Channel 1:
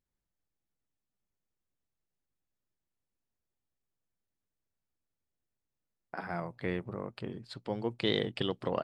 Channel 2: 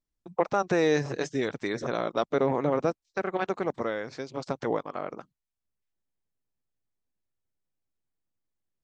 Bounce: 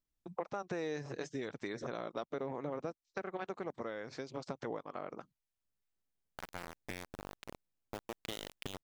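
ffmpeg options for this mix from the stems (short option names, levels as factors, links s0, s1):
-filter_complex "[0:a]lowshelf=f=110:t=q:w=1.5:g=7,acompressor=threshold=0.0178:ratio=6,aeval=exprs='val(0)*gte(abs(val(0)),0.0224)':c=same,adelay=250,volume=0.75[s0];[1:a]acompressor=threshold=0.0141:ratio=3,volume=0.75[s1];[s0][s1]amix=inputs=2:normalize=0"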